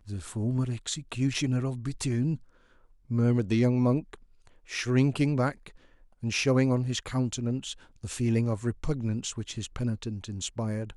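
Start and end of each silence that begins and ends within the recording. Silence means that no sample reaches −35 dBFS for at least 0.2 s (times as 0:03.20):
0:02.35–0:03.11
0:04.14–0:04.71
0:05.67–0:06.23
0:07.73–0:08.04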